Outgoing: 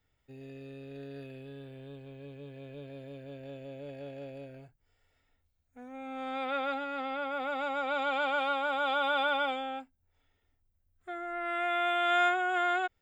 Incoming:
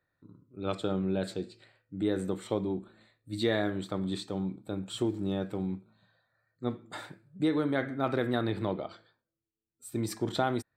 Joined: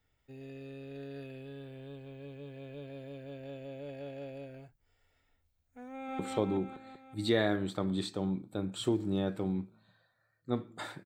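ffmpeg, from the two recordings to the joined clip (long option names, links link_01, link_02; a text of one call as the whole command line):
ffmpeg -i cue0.wav -i cue1.wav -filter_complex "[0:a]apad=whole_dur=11.05,atrim=end=11.05,atrim=end=6.192[link_01];[1:a]atrim=start=2.328:end=7.19[link_02];[link_01][link_02]acrossfade=duration=0.004:curve1=hsin:curve2=hsin,asplit=2[link_03][link_04];[link_04]afade=type=in:start_time=5.89:duration=0.01,afade=type=out:start_time=6.19:duration=0.01,aecho=0:1:190|380|570|760|950|1140|1330|1520|1710|1900|2090:0.944061|0.61364|0.398866|0.259263|0.168521|0.109538|0.0712|0.04628|0.030082|0.0195533|0.0127096[link_05];[link_03][link_05]amix=inputs=2:normalize=0" out.wav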